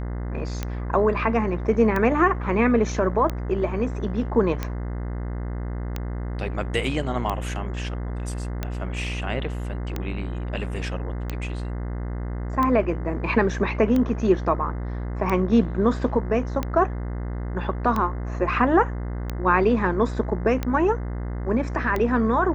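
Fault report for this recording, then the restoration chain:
buzz 60 Hz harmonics 35 -29 dBFS
tick 45 rpm -13 dBFS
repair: de-click; de-hum 60 Hz, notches 35

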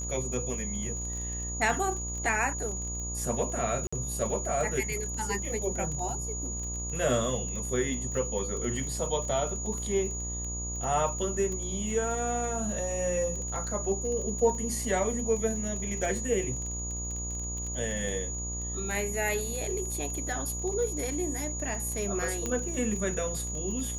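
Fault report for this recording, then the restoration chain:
buzz 60 Hz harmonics 20 -37 dBFS
crackle 28/s -35 dBFS
tone 6800 Hz -35 dBFS
3.87–3.92 gap 55 ms
22.46 pop -17 dBFS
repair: de-click; de-hum 60 Hz, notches 20; notch 6800 Hz, Q 30; interpolate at 3.87, 55 ms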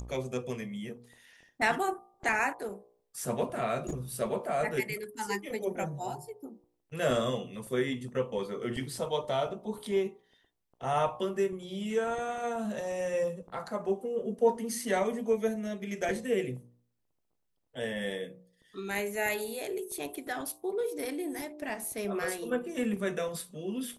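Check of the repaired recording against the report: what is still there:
none

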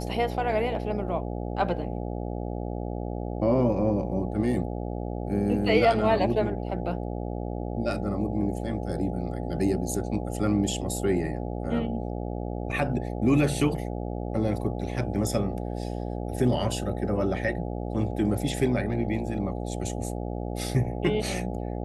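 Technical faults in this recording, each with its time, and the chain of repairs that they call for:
buzz 60 Hz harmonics 14 -32 dBFS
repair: de-hum 60 Hz, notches 14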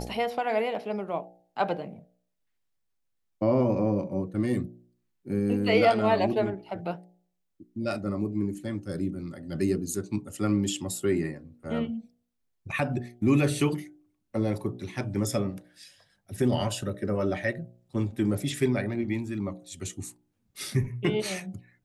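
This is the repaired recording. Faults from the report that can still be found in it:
none

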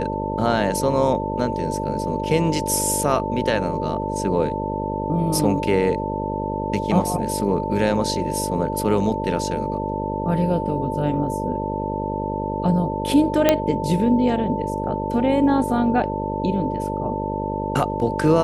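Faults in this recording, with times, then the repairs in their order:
buzz 50 Hz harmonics 12 -27 dBFS
tone 890 Hz -27 dBFS
13.49 pop -1 dBFS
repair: de-click; de-hum 50 Hz, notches 12; notch 890 Hz, Q 30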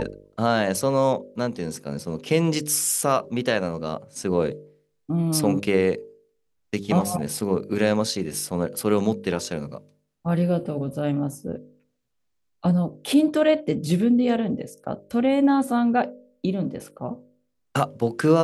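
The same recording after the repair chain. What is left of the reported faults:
none

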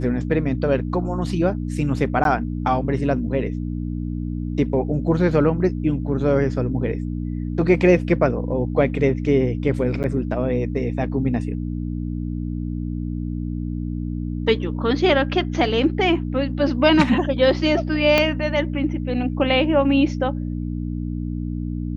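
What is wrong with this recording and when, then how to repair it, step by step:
hum 60 Hz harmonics 5 -26 dBFS
2.24–2.25 gap 12 ms
10.03–10.04 gap 9.1 ms
18.18 pop -4 dBFS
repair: de-click; de-hum 60 Hz, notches 5; interpolate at 2.24, 12 ms; interpolate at 10.03, 9.1 ms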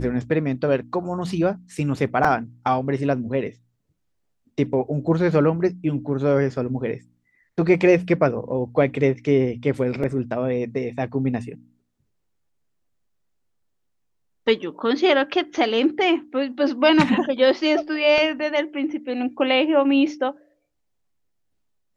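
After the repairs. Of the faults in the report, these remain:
18.18 pop

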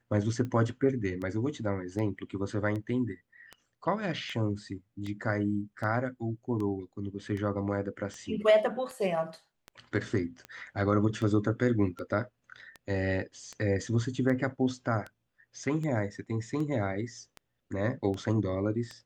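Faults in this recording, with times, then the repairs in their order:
tick 78 rpm -26 dBFS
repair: de-click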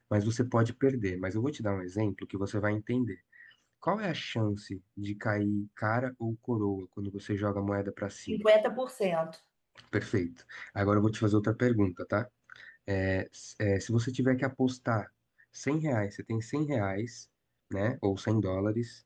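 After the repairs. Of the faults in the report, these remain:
none

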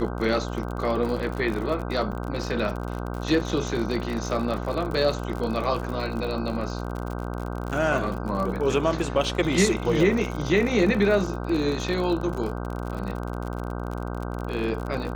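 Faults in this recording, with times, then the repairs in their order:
buzz 60 Hz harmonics 26 -31 dBFS
crackle 53/s -30 dBFS
2.12–2.13 gap 6.5 ms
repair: de-click; de-hum 60 Hz, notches 26; interpolate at 2.12, 6.5 ms

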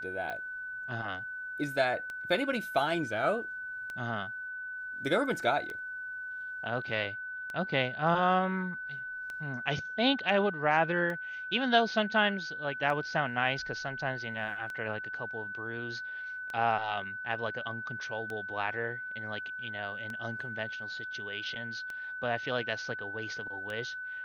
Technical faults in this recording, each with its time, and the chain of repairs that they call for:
tick 33 1/3 rpm -25 dBFS
tone 1500 Hz -37 dBFS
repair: de-click; notch 1500 Hz, Q 30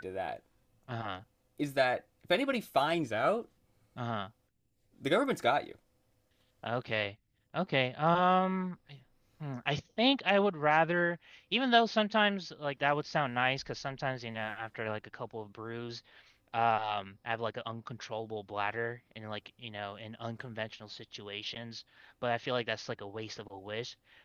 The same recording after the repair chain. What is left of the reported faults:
none

